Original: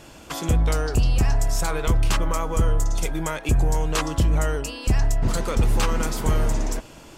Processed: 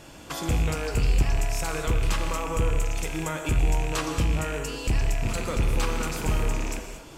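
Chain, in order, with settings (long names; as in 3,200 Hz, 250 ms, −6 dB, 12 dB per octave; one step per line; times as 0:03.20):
loose part that buzzes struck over −24 dBFS, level −19 dBFS
in parallel at −0.5 dB: downward compressor, threshold −29 dBFS, peak gain reduction 12.5 dB
on the sum: convolution reverb, pre-delay 3 ms, DRR 4 dB
level −7.5 dB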